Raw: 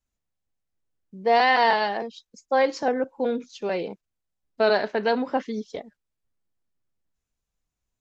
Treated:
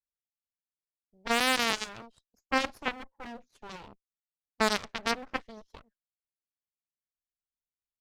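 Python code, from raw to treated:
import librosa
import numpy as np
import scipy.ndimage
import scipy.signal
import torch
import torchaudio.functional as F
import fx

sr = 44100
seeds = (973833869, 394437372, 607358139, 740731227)

y = fx.clip_asym(x, sr, top_db=-29.5, bottom_db=-11.0)
y = fx.cheby_harmonics(y, sr, harmonics=(3, 6), levels_db=(-9, -21), full_scale_db=-11.0)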